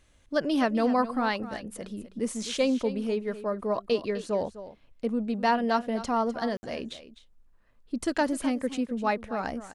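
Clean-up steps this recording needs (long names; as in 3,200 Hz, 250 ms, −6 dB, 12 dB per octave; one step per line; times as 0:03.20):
ambience match 0:06.57–0:06.63
echo removal 254 ms −14 dB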